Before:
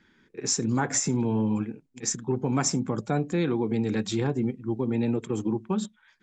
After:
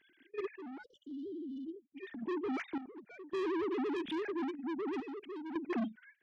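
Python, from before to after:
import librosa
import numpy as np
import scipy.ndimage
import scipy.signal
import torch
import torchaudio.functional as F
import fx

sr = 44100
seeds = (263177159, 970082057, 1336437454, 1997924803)

p1 = fx.sine_speech(x, sr)
p2 = fx.band_shelf(p1, sr, hz=800.0, db=-15.5, octaves=1.7)
p3 = fx.level_steps(p2, sr, step_db=17)
p4 = p2 + (p3 * 10.0 ** (1.0 / 20.0))
p5 = 10.0 ** (-31.5 / 20.0) * np.tanh(p4 / 10.0 ** (-31.5 / 20.0))
p6 = fx.spec_erase(p5, sr, start_s=0.83, length_s=0.99, low_hz=600.0, high_hz=2900.0)
y = fx.tremolo_random(p6, sr, seeds[0], hz=1.8, depth_pct=80)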